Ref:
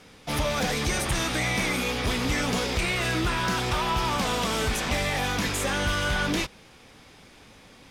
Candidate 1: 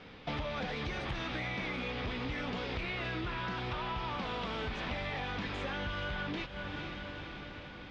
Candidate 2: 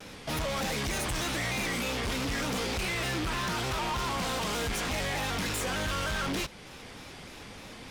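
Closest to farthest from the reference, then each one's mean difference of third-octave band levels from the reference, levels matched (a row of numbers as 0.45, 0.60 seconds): 2, 1; 4.0, 8.5 decibels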